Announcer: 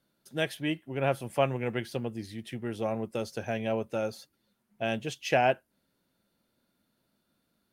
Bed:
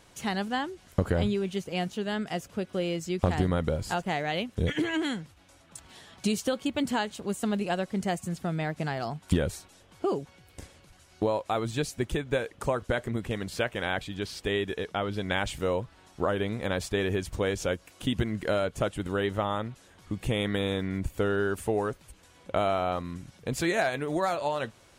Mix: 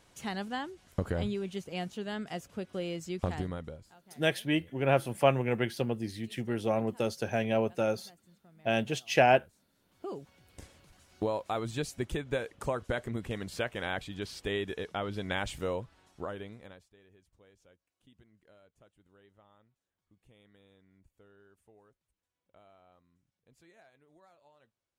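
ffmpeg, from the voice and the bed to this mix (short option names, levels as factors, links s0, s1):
-filter_complex "[0:a]adelay=3850,volume=1.26[s0];[1:a]volume=8.91,afade=t=out:st=3.19:d=0.72:silence=0.0668344,afade=t=in:st=9.7:d=0.96:silence=0.0562341,afade=t=out:st=15.57:d=1.28:silence=0.0334965[s1];[s0][s1]amix=inputs=2:normalize=0"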